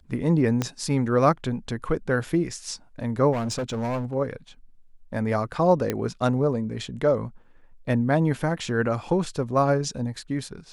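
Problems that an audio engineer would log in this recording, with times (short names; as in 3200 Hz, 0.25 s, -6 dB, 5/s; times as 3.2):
0.62 pop -11 dBFS
3.32–4.15 clipped -24 dBFS
5.9 pop -11 dBFS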